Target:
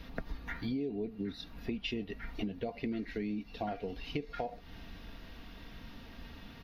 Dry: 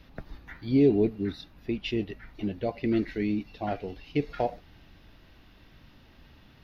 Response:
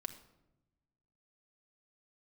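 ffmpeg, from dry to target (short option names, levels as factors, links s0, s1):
-filter_complex "[0:a]asplit=2[s0][s1];[s1]alimiter=limit=0.0668:level=0:latency=1,volume=0.75[s2];[s0][s2]amix=inputs=2:normalize=0,aecho=1:1:4.3:0.42,acompressor=threshold=0.02:ratio=8"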